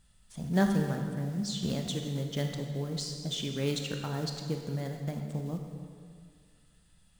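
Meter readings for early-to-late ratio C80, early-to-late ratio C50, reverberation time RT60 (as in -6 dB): 5.5 dB, 4.5 dB, 2.1 s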